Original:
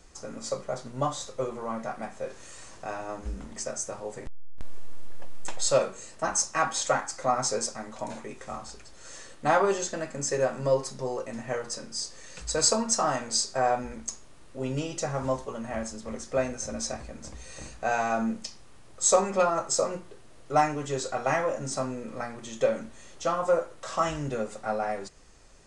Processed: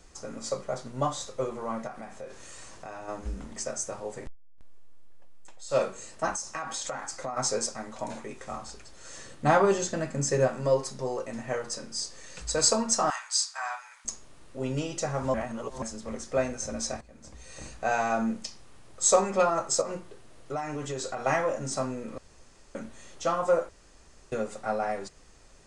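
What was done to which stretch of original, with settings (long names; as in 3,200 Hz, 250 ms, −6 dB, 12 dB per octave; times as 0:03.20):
0:01.87–0:03.08: downward compressor 3 to 1, threshold −38 dBFS
0:04.24–0:05.80: duck −17 dB, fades 0.12 s
0:06.34–0:07.37: downward compressor 10 to 1, threshold −30 dBFS
0:09.17–0:10.48: parametric band 130 Hz +8.5 dB 2 octaves
0:13.10–0:14.05: Butterworth high-pass 940 Hz
0:15.34–0:15.82: reverse
0:17.01–0:17.70: fade in, from −16 dB
0:19.81–0:21.24: downward compressor, threshold −29 dBFS
0:22.18–0:22.75: fill with room tone
0:23.69–0:24.32: fill with room tone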